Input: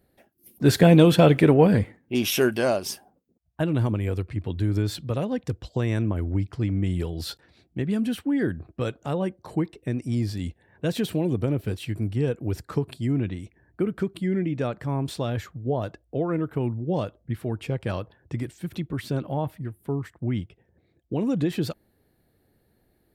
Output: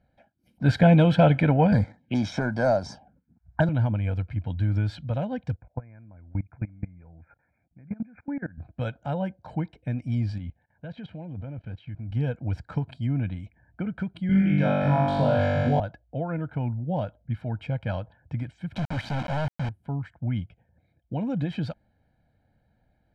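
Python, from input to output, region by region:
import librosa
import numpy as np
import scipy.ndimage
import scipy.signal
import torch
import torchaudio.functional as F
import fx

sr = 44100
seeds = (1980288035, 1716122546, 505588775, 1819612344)

y = fx.chain(x, sr, fx.leveller(passes=1),
    fx.env_phaser(low_hz=490.0, high_hz=2800.0, full_db=-22.5),
    fx.band_squash(depth_pct=70), at=(1.72, 3.69))
y = fx.chain(y, sr, fx.level_steps(step_db=23),
    fx.brickwall_lowpass(high_hz=2500.0),
    fx.low_shelf(hz=63.0, db=-7.0), at=(5.56, 8.58))
y = fx.chain(y, sr, fx.lowpass(hz=3000.0, slope=12),
    fx.gate_hold(open_db=-51.0, close_db=-59.0, hold_ms=71.0, range_db=-21, attack_ms=1.4, release_ms=100.0),
    fx.level_steps(step_db=17), at=(10.38, 12.12))
y = fx.chain(y, sr, fx.high_shelf(hz=6100.0, db=-4.5),
    fx.room_flutter(wall_m=3.5, rt60_s=1.4),
    fx.band_squash(depth_pct=100), at=(14.29, 15.8))
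y = fx.chain(y, sr, fx.highpass(hz=89.0, slope=6),
    fx.quant_companded(bits=2), at=(18.76, 19.69))
y = scipy.signal.sosfilt(scipy.signal.butter(2, 3000.0, 'lowpass', fs=sr, output='sos'), y)
y = y + 0.82 * np.pad(y, (int(1.3 * sr / 1000.0), 0))[:len(y)]
y = F.gain(torch.from_numpy(y), -3.5).numpy()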